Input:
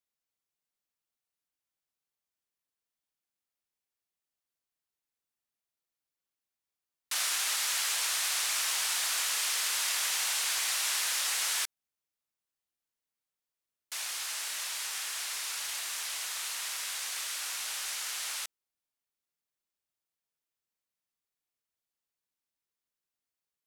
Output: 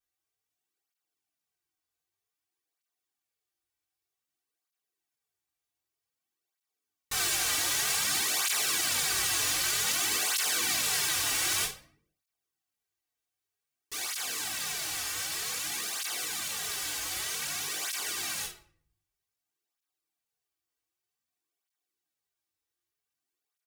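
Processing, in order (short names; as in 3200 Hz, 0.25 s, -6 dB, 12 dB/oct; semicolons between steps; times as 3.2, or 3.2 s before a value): minimum comb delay 2.6 ms; early reflections 20 ms -6.5 dB, 51 ms -9 dB; shoebox room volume 69 m³, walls mixed, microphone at 0.41 m; tape flanging out of phase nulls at 0.53 Hz, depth 5.5 ms; gain +4.5 dB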